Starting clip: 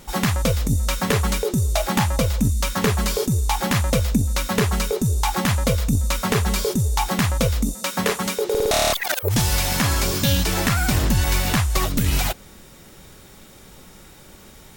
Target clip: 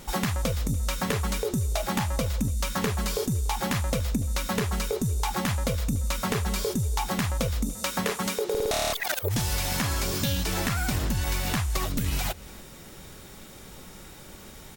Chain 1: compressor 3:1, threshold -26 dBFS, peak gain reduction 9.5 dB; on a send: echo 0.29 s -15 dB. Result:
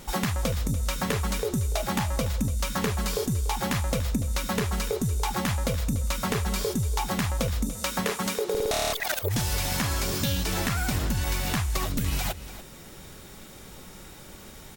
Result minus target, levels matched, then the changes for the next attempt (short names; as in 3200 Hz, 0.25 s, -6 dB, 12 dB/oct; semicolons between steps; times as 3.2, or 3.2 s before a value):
echo-to-direct +7 dB
change: echo 0.29 s -22 dB